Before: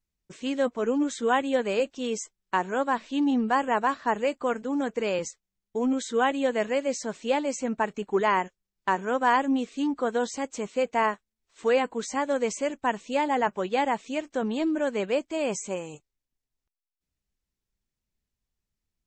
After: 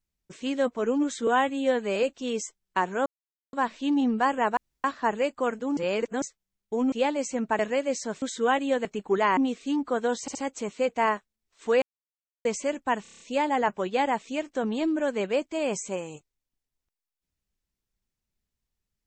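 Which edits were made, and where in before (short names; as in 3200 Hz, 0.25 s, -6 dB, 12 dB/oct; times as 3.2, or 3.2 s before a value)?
1.27–1.73 stretch 1.5×
2.83 insert silence 0.47 s
3.87 insert room tone 0.27 s
4.8–5.25 reverse
5.95–6.58 swap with 7.21–7.88
8.4–9.48 cut
10.32 stutter 0.07 s, 3 plays
11.79–12.42 mute
12.99 stutter 0.03 s, 7 plays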